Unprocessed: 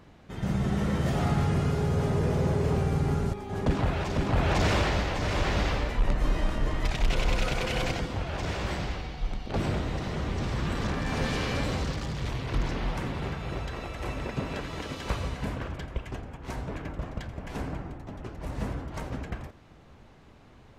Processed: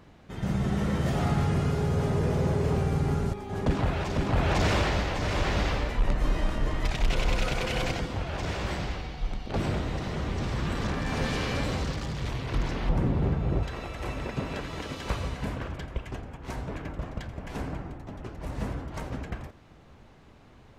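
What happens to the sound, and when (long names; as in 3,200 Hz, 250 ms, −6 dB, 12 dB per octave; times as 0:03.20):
0:12.89–0:13.63: tilt shelving filter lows +8.5 dB, about 910 Hz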